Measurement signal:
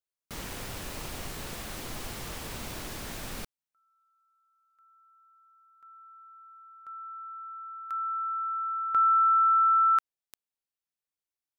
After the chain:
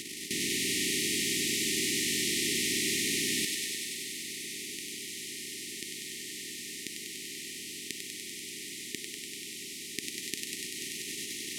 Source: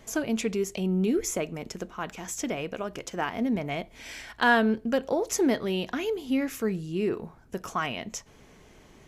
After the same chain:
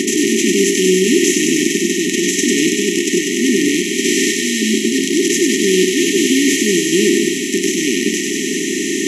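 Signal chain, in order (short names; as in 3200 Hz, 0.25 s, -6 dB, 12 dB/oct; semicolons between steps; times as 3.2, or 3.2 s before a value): per-bin compression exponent 0.2; in parallel at -0.5 dB: level quantiser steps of 20 dB; on the sum: Chebyshev band-pass 280–9800 Hz, order 2; limiter -5.5 dBFS; thinning echo 97 ms, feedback 83%, high-pass 490 Hz, level -4.5 dB; FFT band-reject 430–1800 Hz; gain +3.5 dB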